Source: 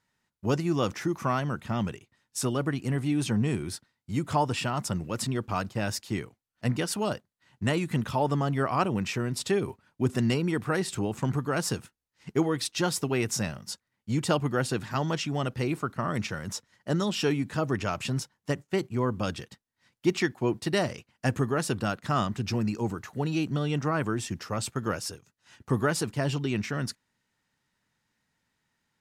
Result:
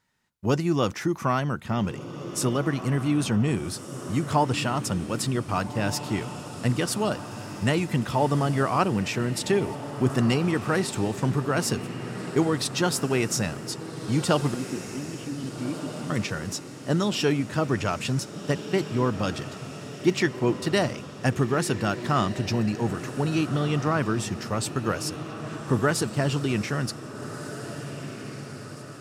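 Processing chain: 14.54–16.1 vocal tract filter i; diffused feedback echo 1.62 s, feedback 54%, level -11 dB; gain +3 dB

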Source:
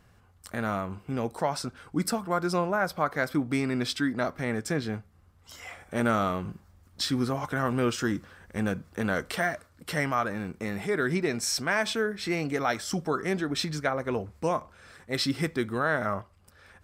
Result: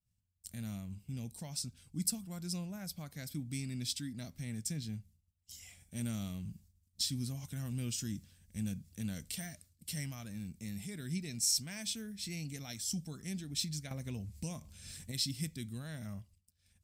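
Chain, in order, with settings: expander -48 dBFS; EQ curve 120 Hz 0 dB, 210 Hz -3 dB, 400 Hz -21 dB, 660 Hz -20 dB, 1300 Hz -27 dB, 2500 Hz -7 dB, 7600 Hz +6 dB; 13.91–15.12 upward compressor, threshold -29 dBFS; gain -5 dB

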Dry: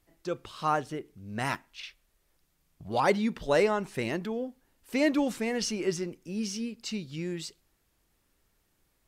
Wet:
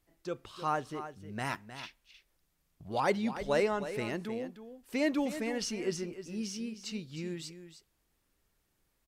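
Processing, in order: echo 0.31 s -11.5 dB; gain -4.5 dB

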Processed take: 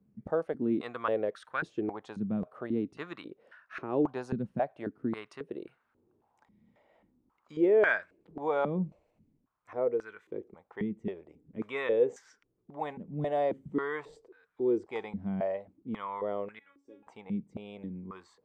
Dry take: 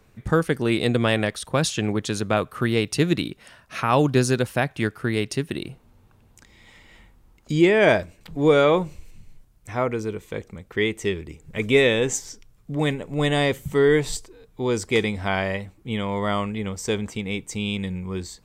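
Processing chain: 16.59–17.07 resonator 280 Hz, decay 0.29 s, harmonics all, mix 100%; stepped band-pass 3.7 Hz 200–1500 Hz

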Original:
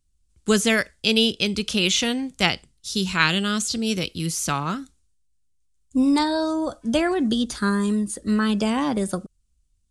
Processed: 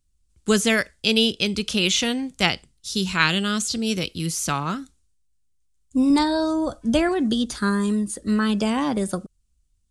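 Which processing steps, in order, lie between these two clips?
6.1–7.09 low shelf 170 Hz +7.5 dB

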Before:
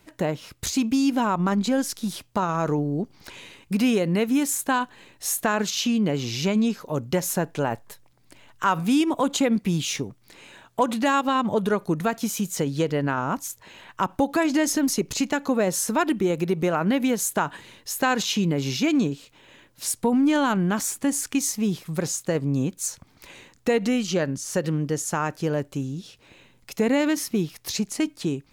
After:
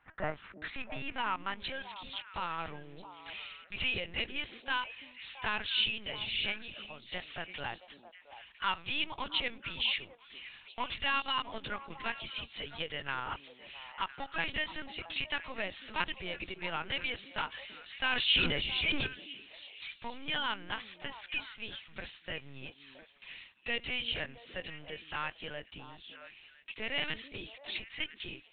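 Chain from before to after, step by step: resonant low shelf 130 Hz +13.5 dB, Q 1.5; sample leveller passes 1; 6.61–7.15 compressor 3:1, threshold -26 dBFS, peak gain reduction 7.5 dB; band-pass sweep 1400 Hz -> 3000 Hz, 0.3–1.66; LPC vocoder at 8 kHz pitch kept; air absorption 150 m; delay with a stepping band-pass 0.335 s, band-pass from 280 Hz, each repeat 1.4 oct, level -7 dB; 17.55–19.07 sustainer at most 30 dB/s; gain +2 dB

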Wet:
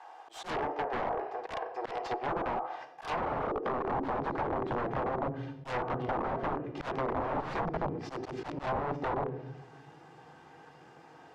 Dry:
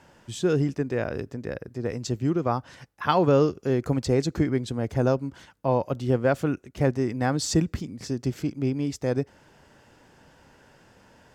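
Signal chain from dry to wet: minimum comb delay 2.5 ms; high-pass sweep 720 Hz -> 170 Hz, 2.82–4.38; limiter -21.5 dBFS, peak gain reduction 14.5 dB; low shelf 110 Hz +2.5 dB; notches 60/120/180/240/300/360/420 Hz; reverb RT60 0.90 s, pre-delay 6 ms, DRR 4 dB; added harmonics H 4 -25 dB, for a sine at -15.5 dBFS; wrapped overs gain 25.5 dB; bell 860 Hz +7.5 dB 1.2 oct; auto swell 0.122 s; LPF 3400 Hz 6 dB/oct; treble ducked by the level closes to 1000 Hz, closed at -25 dBFS; gain -2 dB

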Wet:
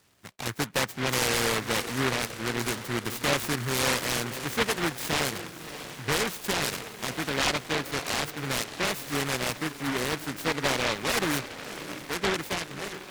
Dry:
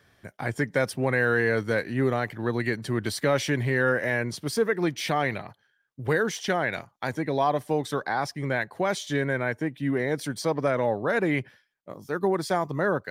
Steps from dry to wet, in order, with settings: ending faded out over 0.82 s; LPF 8200 Hz; low shelf 78 Hz -10 dB; on a send: diffused feedback echo 0.611 s, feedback 48%, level -12 dB; on the sum: vibrato 3.7 Hz 12 cents; noise-modulated delay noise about 1400 Hz, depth 0.34 ms; gain -2.5 dB

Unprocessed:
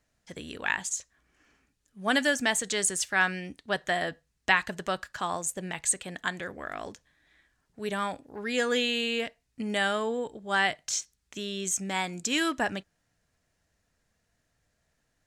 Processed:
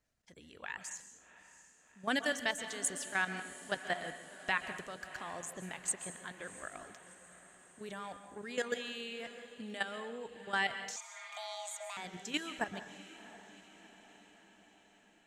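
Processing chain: reverb removal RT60 0.54 s; level quantiser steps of 13 dB; diffused feedback echo 0.708 s, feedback 58%, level -15 dB; plate-style reverb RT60 0.76 s, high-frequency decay 0.9×, pre-delay 0.115 s, DRR 9.5 dB; 10.96–11.97 frequency shift +440 Hz; gain -5 dB

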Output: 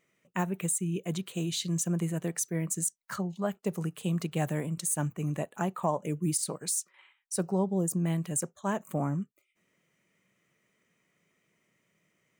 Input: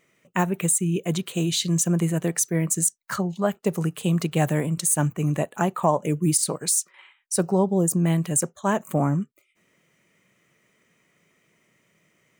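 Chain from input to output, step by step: bell 190 Hz +2.5 dB 0.22 oct; gain -8.5 dB

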